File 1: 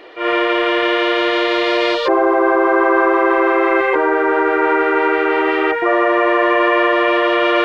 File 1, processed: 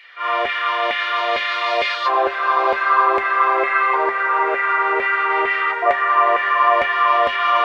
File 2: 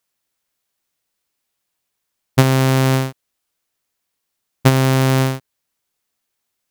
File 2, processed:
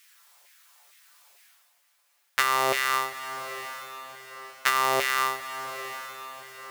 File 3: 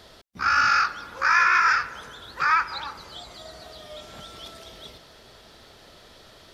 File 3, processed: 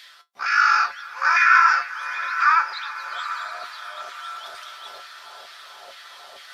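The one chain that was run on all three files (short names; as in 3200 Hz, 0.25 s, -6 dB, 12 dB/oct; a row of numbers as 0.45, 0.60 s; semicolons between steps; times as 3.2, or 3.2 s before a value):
resonant low shelf 160 Hz +6 dB, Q 1.5; LFO high-pass saw down 2.2 Hz 590–2200 Hz; reverse; upward compressor, threshold -34 dBFS; reverse; resonator 79 Hz, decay 0.15 s, harmonics odd, mix 80%; diffused feedback echo 0.822 s, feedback 45%, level -11.5 dB; normalise peaks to -3 dBFS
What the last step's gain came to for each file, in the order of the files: +2.5, +2.0, +5.5 dB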